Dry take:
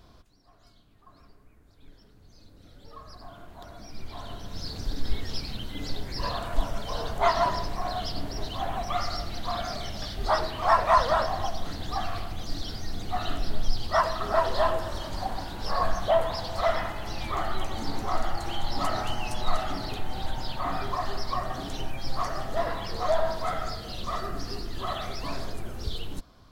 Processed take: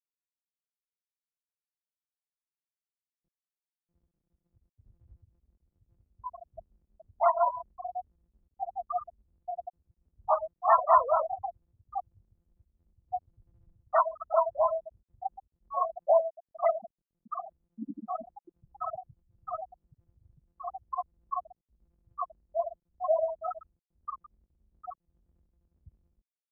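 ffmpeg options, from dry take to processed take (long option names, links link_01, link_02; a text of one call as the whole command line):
ffmpeg -i in.wav -filter_complex "[0:a]asplit=2[link_01][link_02];[link_02]afade=type=in:start_time=8.94:duration=0.01,afade=type=out:start_time=9.53:duration=0.01,aecho=0:1:580|1160|1740|2320|2900|3480|4060|4640|5220|5800|6380|6960:0.237137|0.201567|0.171332|0.145632|0.123787|0.105219|0.0894362|0.0760208|0.0646177|0.054925|0.0466863|0.0396833[link_03];[link_01][link_03]amix=inputs=2:normalize=0,asettb=1/sr,asplit=3[link_04][link_05][link_06];[link_04]atrim=end=15.724[link_07];[link_05]atrim=start=15.72:end=18.64,asetpts=PTS-STARTPTS,afade=type=in:duration=0.004:curve=qsin,afade=type=out:start_time=2.916:duration=0.004:curve=qsin,lowshelf=frequency=160:width_type=q:width=3:gain=-8.5[link_08];[link_06]atrim=start=18.636[link_09];[link_07][link_08]acrossfade=duration=0.004:curve1=hsin:curve2=qsin[link_10];[link_10][link_09]acrossfade=duration=0.004:curve1=qsin:curve2=hsin,lowpass=3100,afftfilt=real='re*gte(hypot(re,im),0.2)':imag='im*gte(hypot(re,im),0.2)':win_size=1024:overlap=0.75,highpass=220" out.wav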